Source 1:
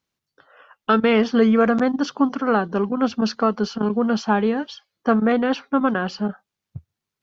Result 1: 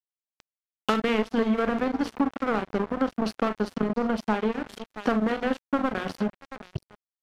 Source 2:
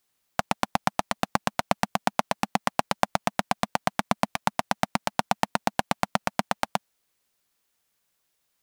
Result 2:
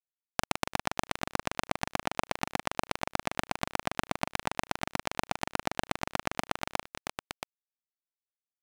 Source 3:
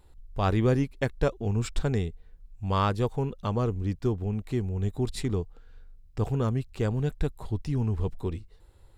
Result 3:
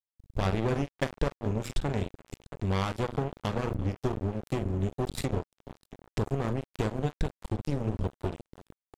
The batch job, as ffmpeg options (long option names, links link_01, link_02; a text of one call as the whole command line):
ffmpeg -i in.wav -af "equalizer=frequency=1100:width_type=o:width=2:gain=-4.5,bandreject=frequency=60:width_type=h:width=6,bandreject=frequency=120:width_type=h:width=6,bandreject=frequency=180:width_type=h:width=6,bandreject=frequency=240:width_type=h:width=6,aecho=1:1:42|342|676:0.398|0.112|0.1,acompressor=threshold=-39dB:ratio=3,aeval=exprs='sgn(val(0))*max(abs(val(0))-0.0106,0)':channel_layout=same,aresample=32000,aresample=44100,alimiter=level_in=17dB:limit=-1dB:release=50:level=0:latency=1,adynamicequalizer=threshold=0.00447:dfrequency=3400:dqfactor=0.7:tfrequency=3400:tqfactor=0.7:attack=5:release=100:ratio=0.375:range=3:mode=cutabove:tftype=highshelf,volume=-2dB" out.wav